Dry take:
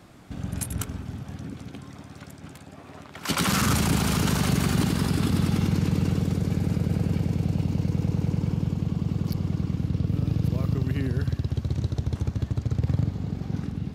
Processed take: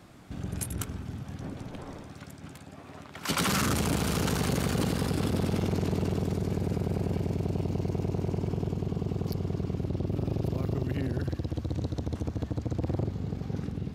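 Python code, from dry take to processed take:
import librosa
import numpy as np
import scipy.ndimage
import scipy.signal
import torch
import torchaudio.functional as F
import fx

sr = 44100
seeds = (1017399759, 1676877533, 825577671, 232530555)

y = fx.dmg_wind(x, sr, seeds[0], corner_hz=530.0, level_db=-34.0, at=(1.4, 2.1), fade=0.02)
y = fx.transformer_sat(y, sr, knee_hz=430.0)
y = y * librosa.db_to_amplitude(-2.0)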